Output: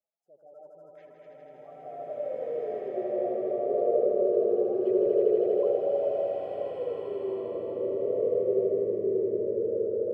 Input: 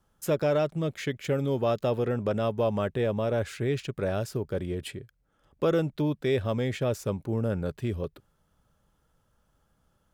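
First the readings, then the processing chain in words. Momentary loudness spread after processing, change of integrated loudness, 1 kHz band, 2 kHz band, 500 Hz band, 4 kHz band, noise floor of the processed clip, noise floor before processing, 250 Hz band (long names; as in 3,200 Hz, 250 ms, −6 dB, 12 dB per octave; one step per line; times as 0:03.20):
9 LU, +1.0 dB, −3.5 dB, below −15 dB, +3.5 dB, below −15 dB, −53 dBFS, −71 dBFS, −3.5 dB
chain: gate on every frequency bin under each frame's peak −15 dB strong
parametric band 100 Hz −8 dB 0.34 octaves
reversed playback
downward compressor 6 to 1, threshold −36 dBFS, peak gain reduction 14 dB
reversed playback
parametric band 7,400 Hz −3 dB 0.87 octaves
on a send: echo that builds up and dies away 80 ms, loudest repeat 5, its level −4.5 dB
on the sum: brickwall limiter −25 dBFS, peak gain reduction 5 dB
automatic gain control gain up to 10 dB
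LFO wah 0.23 Hz 370–1,000 Hz, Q 21
slow-attack reverb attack 1,740 ms, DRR −8.5 dB
level +2.5 dB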